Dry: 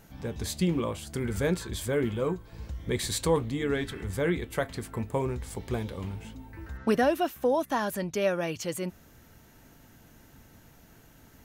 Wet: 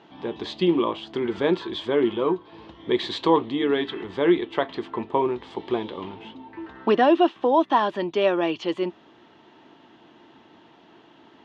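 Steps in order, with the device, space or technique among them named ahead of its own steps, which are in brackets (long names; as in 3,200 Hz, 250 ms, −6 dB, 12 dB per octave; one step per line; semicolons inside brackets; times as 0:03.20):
phone earpiece (loudspeaker in its box 330–3,500 Hz, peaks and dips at 340 Hz +8 dB, 520 Hz −6 dB, 980 Hz +5 dB, 1,500 Hz −7 dB, 2,200 Hz −6 dB, 3,300 Hz +5 dB)
level +8 dB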